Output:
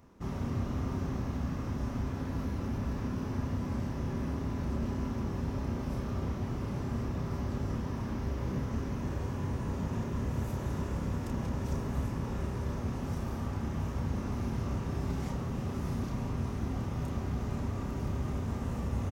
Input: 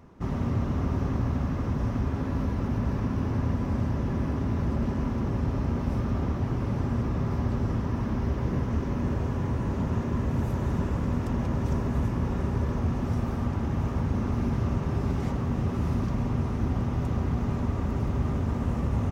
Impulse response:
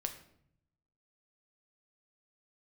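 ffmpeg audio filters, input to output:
-filter_complex "[0:a]highshelf=f=4200:g=9.5,asplit=2[s0][s1];[s1]adelay=31,volume=0.562[s2];[s0][s2]amix=inputs=2:normalize=0,volume=0.422"

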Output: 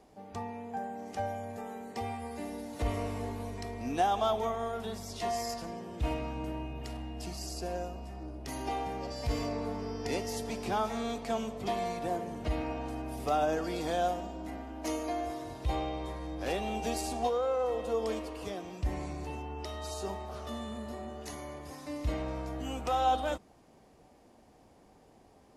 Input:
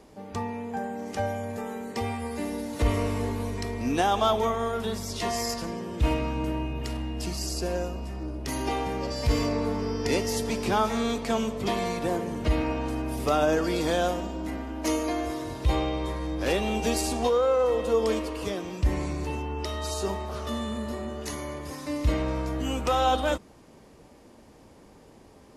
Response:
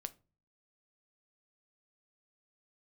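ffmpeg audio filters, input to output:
-af "equalizer=f=730:w=5.3:g=9,volume=0.376"

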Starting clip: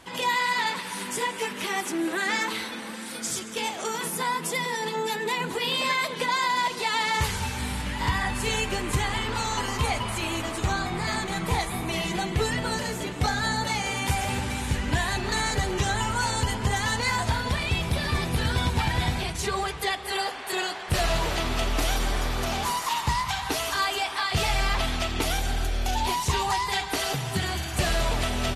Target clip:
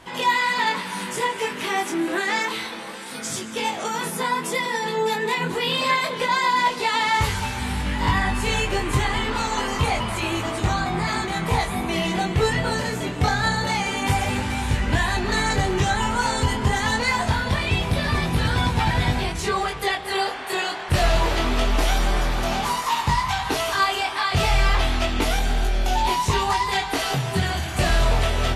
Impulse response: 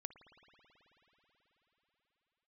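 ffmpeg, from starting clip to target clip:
-filter_complex "[0:a]highshelf=f=4200:g=-6,flanger=delay=19:depth=4.3:speed=0.27,asettb=1/sr,asplit=3[s0][s1][s2];[s0]atrim=end=2.214[s3];[s1]atrim=start=2.21:end=3.12,asetpts=PTS-STARTPTS,afade=t=in:d=0.004:c=qsin,afade=t=out:st=0.906:d=0.004:c=qsin,equalizer=f=100:t=o:w=0.67:g=-3,equalizer=f=250:t=o:w=0.67:g=-8,equalizer=f=1600:t=o:w=0.67:g=-3[s4];[s2]atrim=start=3.116[s5];[s3][s4]acrossfade=d=0.004:c1=hsin:c2=qsin[s6];[s6][s5]acrossfade=d=0.004:c1=qsin:c2=hsin,volume=2.51"

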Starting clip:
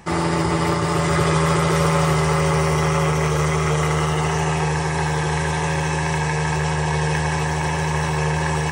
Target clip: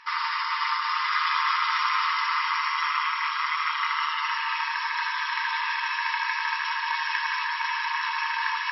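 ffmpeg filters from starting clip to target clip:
-af "afftfilt=real='re*between(b*sr/4096,900,5600)':imag='im*between(b*sr/4096,900,5600)':win_size=4096:overlap=0.75"

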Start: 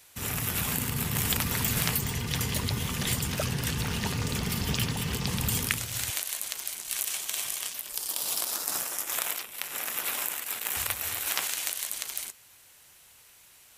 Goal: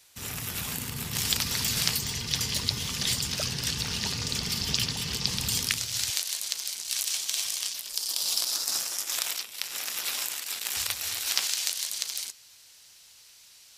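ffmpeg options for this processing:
-af "asetnsamples=n=441:p=0,asendcmd='1.13 equalizer g 15',equalizer=f=4900:w=0.93:g=7,volume=0.531"

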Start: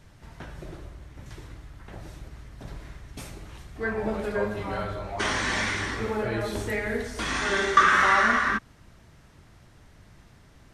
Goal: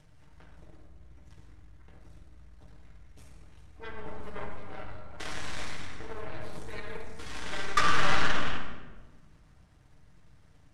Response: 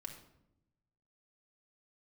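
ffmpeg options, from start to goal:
-filter_complex "[0:a]acompressor=mode=upward:threshold=0.0224:ratio=2.5,aeval=exprs='0.631*(cos(1*acos(clip(val(0)/0.631,-1,1)))-cos(1*PI/2))+0.0708*(cos(7*acos(clip(val(0)/0.631,-1,1)))-cos(7*PI/2))+0.0708*(cos(8*acos(clip(val(0)/0.631,-1,1)))-cos(8*PI/2))':c=same[s0];[1:a]atrim=start_sample=2205,asetrate=22932,aresample=44100[s1];[s0][s1]afir=irnorm=-1:irlink=0,volume=0.501"

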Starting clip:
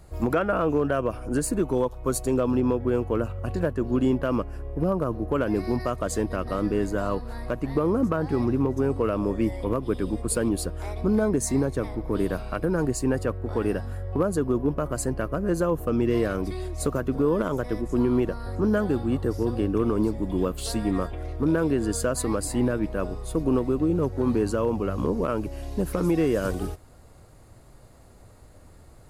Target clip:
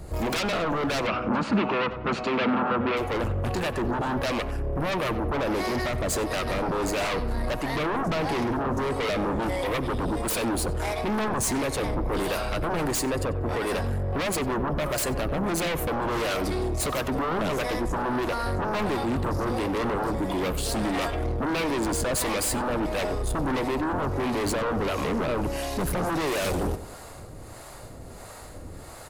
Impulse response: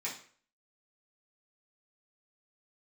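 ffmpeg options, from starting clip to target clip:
-filter_complex "[0:a]lowshelf=f=330:g=-7.5,asettb=1/sr,asplit=3[s0][s1][s2];[s0]atrim=end=12.934[s3];[s1]atrim=start=12.93:end=13.67,asetpts=PTS-STARTPTS,afade=t=in:d=0.004:c=qsin,afade=t=out:st=0.736:d=0.004:c=qsin,acompressor=threshold=0.0398:ratio=6[s4];[s2]atrim=start=13.666[s5];[s3][s4]acrossfade=d=0.004:c1=hsin:c2=qsin[s6];[s6][s5]acrossfade=d=0.004:c1=qsin:c2=hsin,asoftclip=type=tanh:threshold=0.0335,acrossover=split=510[s7][s8];[s7]aeval=exprs='val(0)*(1-0.7/2+0.7/2*cos(2*PI*1.5*n/s))':c=same[s9];[s8]aeval=exprs='val(0)*(1-0.7/2-0.7/2*cos(2*PI*1.5*n/s))':c=same[s10];[s9][s10]amix=inputs=2:normalize=0,aeval=exprs='0.0668*sin(PI/2*4.47*val(0)/0.0668)':c=same,asettb=1/sr,asplit=3[s11][s12][s13];[s11]atrim=end=1.074[s14];[s12]atrim=start=1.07:end=2.97,asetpts=PTS-STARTPTS,afade=t=in:d=0.004:c=qsin,afade=t=out:st=1.896:d=0.004:c=qsin,highpass=110,equalizer=f=210:t=q:w=4:g=10,equalizer=f=1300:t=q:w=4:g=8,equalizer=f=2600:t=q:w=4:g=7,lowpass=f=4300:w=0.5412,lowpass=f=4300:w=1.3066[s15];[s13]atrim=start=2.966[s16];[s14][s15]acrossfade=d=0.004:c1=hsin:c2=qsin[s17];[s17][s16]acrossfade=d=0.004:c1=qsin:c2=hsin,asplit=2[s18][s19];[s19]adelay=94,lowpass=f=2000:p=1,volume=0.251,asplit=2[s20][s21];[s21]adelay=94,lowpass=f=2000:p=1,volume=0.51,asplit=2[s22][s23];[s23]adelay=94,lowpass=f=2000:p=1,volume=0.51,asplit=2[s24][s25];[s25]adelay=94,lowpass=f=2000:p=1,volume=0.51,asplit=2[s26][s27];[s27]adelay=94,lowpass=f=2000:p=1,volume=0.51[s28];[s20][s22][s24][s26][s28]amix=inputs=5:normalize=0[s29];[s18][s29]amix=inputs=2:normalize=0"

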